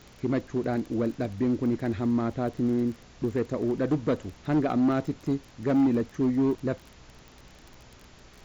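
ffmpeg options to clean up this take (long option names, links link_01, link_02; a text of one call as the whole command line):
ffmpeg -i in.wav -af "adeclick=threshold=4,bandreject=frequency=62:width_type=h:width=4,bandreject=frequency=124:width_type=h:width=4,bandreject=frequency=186:width_type=h:width=4,bandreject=frequency=248:width_type=h:width=4,afftdn=noise_reduction=20:noise_floor=-52" out.wav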